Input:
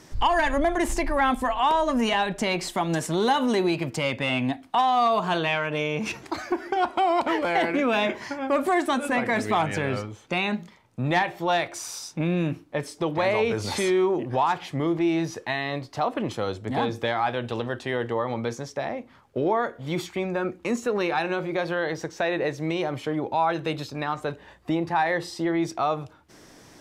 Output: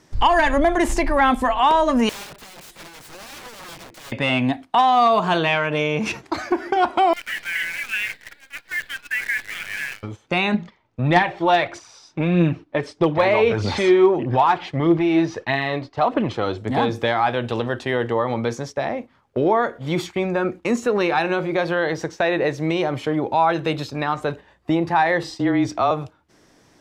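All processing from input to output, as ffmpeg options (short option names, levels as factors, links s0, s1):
-filter_complex "[0:a]asettb=1/sr,asplit=3[s0][s1][s2];[s0]atrim=end=2.094[s3];[s1]atrim=start=2.09:end=4.12,asetpts=PTS-STARTPTS,afade=t=in:d=0.004:c=qsin,afade=t=out:st=2.026:d=0.004:c=qsin,bandreject=f=2900:w=26,acompressor=threshold=0.0316:ratio=20:attack=3.2:release=140:knee=1:detection=peak,aeval=exprs='(mod(50.1*val(0)+1,2)-1)/50.1':c=same[s4];[s2]atrim=start=4.116[s5];[s3][s4]acrossfade=d=0.004:c1=hsin:c2=qsin[s6];[s6][s5]acrossfade=d=0.004:c1=qsin:c2=hsin,asettb=1/sr,asplit=3[s7][s8][s9];[s7]atrim=end=7.134[s10];[s8]atrim=start=7.13:end=10.03,asetpts=PTS-STARTPTS,afade=t=in:d=0.004:c=qsin,afade=t=out:st=2.896:d=0.004:c=qsin,asuperpass=centerf=2200:order=12:qfactor=1.3,acrusher=bits=7:dc=4:mix=0:aa=0.000001[s11];[s9]atrim=start=10.026[s12];[s10][s11]acrossfade=d=0.004:c1=hsin:c2=qsin[s13];[s13][s12]acrossfade=d=0.004:c1=qsin:c2=hsin,asettb=1/sr,asplit=3[s14][s15][s16];[s14]atrim=end=10.544[s17];[s15]atrim=start=10.54:end=16.58,asetpts=PTS-STARTPTS,afade=t=in:d=0.004:c=qsin,afade=t=out:st=6.036:d=0.004:c=qsin,lowpass=4500,aphaser=in_gain=1:out_gain=1:delay=3.5:decay=0.38:speed=1.6:type=triangular,asoftclip=type=hard:threshold=0.237[s18];[s16]atrim=start=16.576[s19];[s17][s18]acrossfade=d=0.004:c1=hsin:c2=qsin[s20];[s20][s19]acrossfade=d=0.004:c1=qsin:c2=hsin,asettb=1/sr,asplit=3[s21][s22][s23];[s21]atrim=end=25.234[s24];[s22]atrim=start=25.23:end=25.91,asetpts=PTS-STARTPTS,afade=t=in:d=0.004:c=qsin,afade=t=out:st=0.676:d=0.004:c=qsin,equalizer=f=11000:t=o:w=0.44:g=-10.5,afreqshift=-24[s25];[s23]atrim=start=25.906[s26];[s24][s25]acrossfade=d=0.004:c1=hsin:c2=qsin[s27];[s27][s26]acrossfade=d=0.004:c1=qsin:c2=hsin,agate=range=0.316:threshold=0.0126:ratio=16:detection=peak,highshelf=f=8400:g=-6,volume=1.88"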